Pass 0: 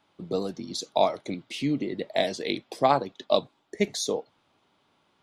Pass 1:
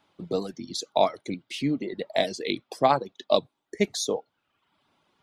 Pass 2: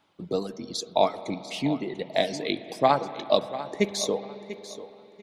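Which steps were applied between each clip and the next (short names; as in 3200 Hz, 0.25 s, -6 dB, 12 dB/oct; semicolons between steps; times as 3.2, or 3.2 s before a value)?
reverb removal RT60 0.81 s; gain +1 dB
feedback echo 0.693 s, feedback 23%, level -14 dB; spring tank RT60 3.8 s, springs 45/55 ms, chirp 75 ms, DRR 13 dB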